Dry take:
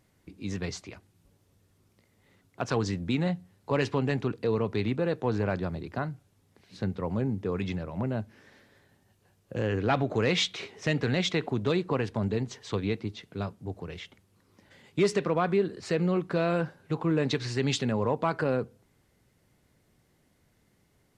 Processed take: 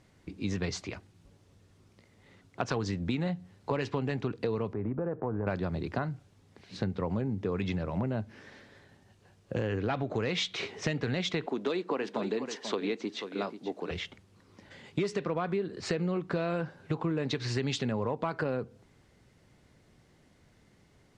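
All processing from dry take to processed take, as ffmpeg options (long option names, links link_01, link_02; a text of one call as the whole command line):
ffmpeg -i in.wav -filter_complex "[0:a]asettb=1/sr,asplit=3[link_01][link_02][link_03];[link_01]atrim=end=4.734[link_04];[link_02]atrim=start=4.73:end=5.47,asetpts=PTS-STARTPTS,afade=type=in:duration=0.004:curve=qsin,afade=type=out:start_time=0.736:duration=0.004:curve=qsin,lowpass=frequency=1400:width=0.5412,lowpass=frequency=1400:width=1.3066,acompressor=threshold=-34dB:ratio=2.5:attack=3.2:release=140:knee=1:detection=peak[link_05];[link_03]atrim=start=5.466[link_06];[link_04][link_05]acrossfade=duration=0.004:curve1=hsin:curve2=qsin[link_07];[link_07][link_06]acrossfade=duration=0.004:curve1=qsin:curve2=hsin,asettb=1/sr,asplit=3[link_08][link_09][link_10];[link_08]atrim=end=11.464[link_11];[link_09]atrim=start=11.46:end=13.91,asetpts=PTS-STARTPTS,afade=type=in:duration=0.004:curve=qsin,afade=type=out:start_time=2.446:duration=0.004:curve=qsin,highpass=frequency=240:width=0.5412,highpass=frequency=240:width=1.3066,aecho=1:1:487:0.224,atrim=end_sample=108045[link_12];[link_10]atrim=start=13.906[link_13];[link_11][link_12]acrossfade=duration=0.004:curve1=hsin:curve2=qsin[link_14];[link_14][link_13]acrossfade=duration=0.004:curve1=qsin:curve2=hsin,acompressor=threshold=-33dB:ratio=6,lowpass=7200,volume=5dB" out.wav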